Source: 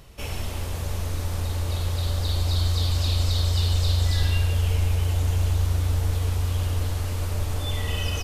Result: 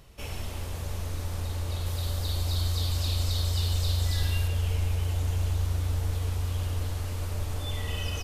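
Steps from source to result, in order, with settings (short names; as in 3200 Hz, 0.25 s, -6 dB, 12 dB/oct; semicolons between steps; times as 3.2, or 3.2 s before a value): 1.86–4.48 high shelf 9300 Hz +8 dB; gain -5 dB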